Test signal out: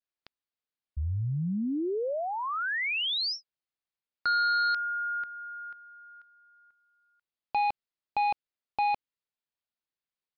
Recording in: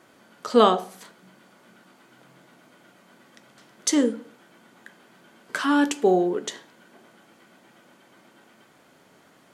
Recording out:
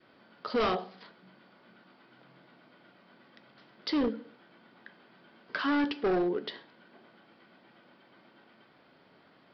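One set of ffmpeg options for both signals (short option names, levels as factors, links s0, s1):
-af "aresample=11025,asoftclip=type=hard:threshold=0.106,aresample=44100,adynamicequalizer=threshold=0.0141:dfrequency=870:dqfactor=1.3:tfrequency=870:tqfactor=1.3:attack=5:release=100:ratio=0.375:range=2:mode=cutabove:tftype=bell,volume=0.596"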